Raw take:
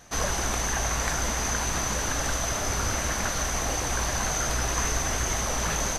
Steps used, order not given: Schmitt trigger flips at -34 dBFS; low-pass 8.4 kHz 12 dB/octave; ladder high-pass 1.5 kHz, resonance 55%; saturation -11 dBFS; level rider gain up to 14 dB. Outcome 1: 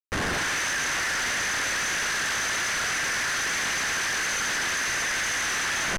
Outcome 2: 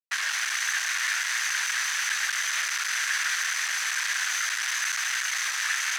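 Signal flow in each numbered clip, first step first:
saturation > level rider > ladder high-pass > Schmitt trigger > low-pass; level rider > Schmitt trigger > low-pass > saturation > ladder high-pass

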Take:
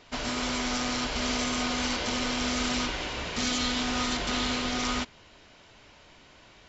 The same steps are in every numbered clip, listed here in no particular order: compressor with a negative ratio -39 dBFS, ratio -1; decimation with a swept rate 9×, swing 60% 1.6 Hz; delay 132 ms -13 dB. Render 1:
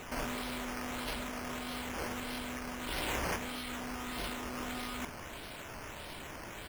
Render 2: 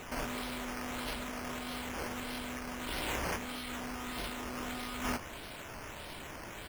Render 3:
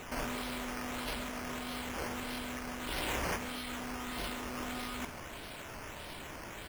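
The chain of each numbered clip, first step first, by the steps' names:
compressor with a negative ratio > delay > decimation with a swept rate; delay > compressor with a negative ratio > decimation with a swept rate; compressor with a negative ratio > decimation with a swept rate > delay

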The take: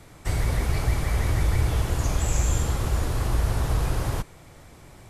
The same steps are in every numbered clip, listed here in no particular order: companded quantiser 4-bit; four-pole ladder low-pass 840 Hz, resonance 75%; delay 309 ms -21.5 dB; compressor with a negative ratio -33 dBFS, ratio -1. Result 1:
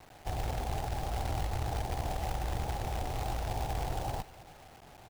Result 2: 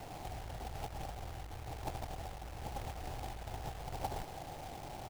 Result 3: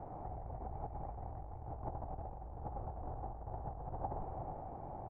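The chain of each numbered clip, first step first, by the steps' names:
four-pole ladder low-pass > compressor with a negative ratio > delay > companded quantiser; compressor with a negative ratio > four-pole ladder low-pass > companded quantiser > delay; delay > companded quantiser > compressor with a negative ratio > four-pole ladder low-pass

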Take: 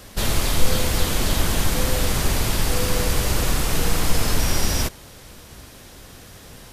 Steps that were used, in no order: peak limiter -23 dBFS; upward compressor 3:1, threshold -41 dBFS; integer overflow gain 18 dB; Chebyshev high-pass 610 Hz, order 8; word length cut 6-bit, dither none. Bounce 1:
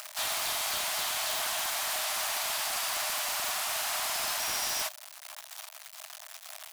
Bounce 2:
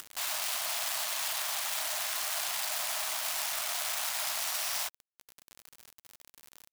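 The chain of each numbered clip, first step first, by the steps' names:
upward compressor > word length cut > Chebyshev high-pass > integer overflow > peak limiter; integer overflow > Chebyshev high-pass > upward compressor > word length cut > peak limiter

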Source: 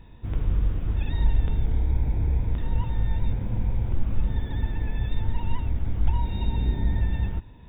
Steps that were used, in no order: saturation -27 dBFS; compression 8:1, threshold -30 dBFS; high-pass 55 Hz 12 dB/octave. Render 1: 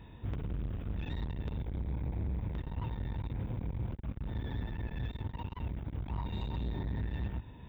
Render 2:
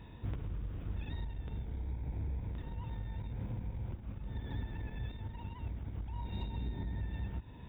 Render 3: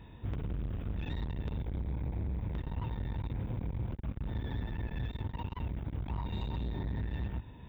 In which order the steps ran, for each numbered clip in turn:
saturation > compression > high-pass; compression > saturation > high-pass; saturation > high-pass > compression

